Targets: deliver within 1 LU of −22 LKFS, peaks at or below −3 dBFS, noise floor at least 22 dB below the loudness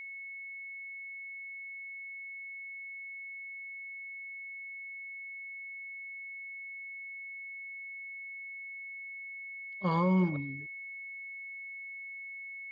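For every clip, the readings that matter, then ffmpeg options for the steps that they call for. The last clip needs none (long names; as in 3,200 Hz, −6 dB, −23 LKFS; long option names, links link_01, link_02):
interfering tone 2,200 Hz; level of the tone −41 dBFS; integrated loudness −38.5 LKFS; sample peak −18.0 dBFS; target loudness −22.0 LKFS
→ -af "bandreject=frequency=2200:width=30"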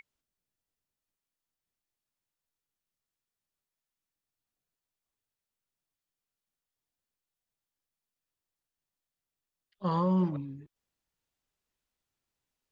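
interfering tone none found; integrated loudness −30.5 LKFS; sample peak −18.5 dBFS; target loudness −22.0 LKFS
→ -af "volume=8.5dB"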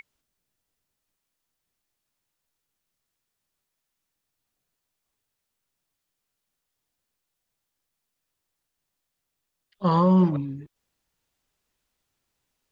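integrated loudness −22.0 LKFS; sample peak −10.0 dBFS; background noise floor −82 dBFS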